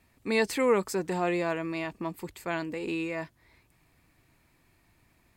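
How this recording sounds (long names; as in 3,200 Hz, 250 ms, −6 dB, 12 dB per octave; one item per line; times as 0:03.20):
background noise floor −67 dBFS
spectral slope −4.0 dB per octave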